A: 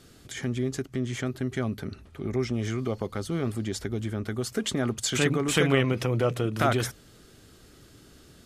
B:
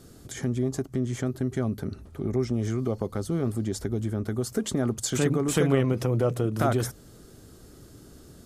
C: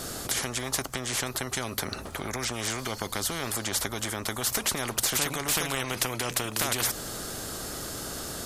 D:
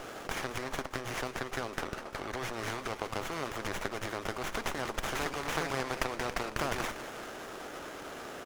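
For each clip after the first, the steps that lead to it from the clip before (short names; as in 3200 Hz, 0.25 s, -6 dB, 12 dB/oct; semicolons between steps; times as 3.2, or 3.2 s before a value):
spectral gain 0.62–0.87, 570–1200 Hz +6 dB; bell 2600 Hz -11 dB 1.9 oct; in parallel at -2.5 dB: compressor, threshold -34 dBFS, peak gain reduction 15 dB
spectral compressor 4:1
BPF 350–5700 Hz; feedback echo 0.199 s, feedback 60%, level -13 dB; running maximum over 9 samples; gain -2 dB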